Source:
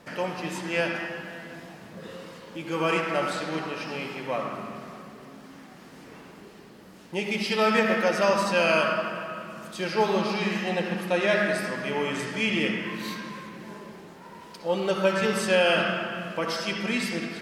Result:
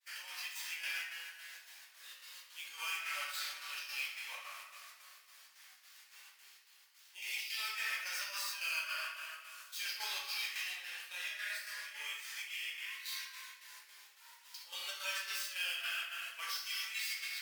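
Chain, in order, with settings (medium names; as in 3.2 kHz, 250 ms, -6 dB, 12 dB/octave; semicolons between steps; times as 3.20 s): median filter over 5 samples; expander -45 dBFS; high-pass 1.5 kHz 12 dB/octave; differentiator; peak limiter -34.5 dBFS, peak gain reduction 11.5 dB; square tremolo 3.6 Hz, depth 65%, duty 65%; 10.61–13.05 s: chorus 1.2 Hz, delay 16.5 ms, depth 6.2 ms; reverberation RT60 0.60 s, pre-delay 5 ms, DRR -3.5 dB; trim +2.5 dB; Vorbis 96 kbps 44.1 kHz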